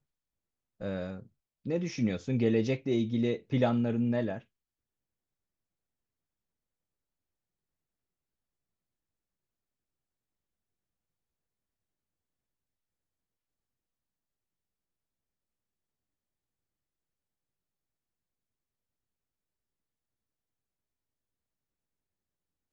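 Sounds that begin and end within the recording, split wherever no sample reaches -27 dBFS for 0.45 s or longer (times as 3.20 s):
0.83–1.06 s
1.68–4.34 s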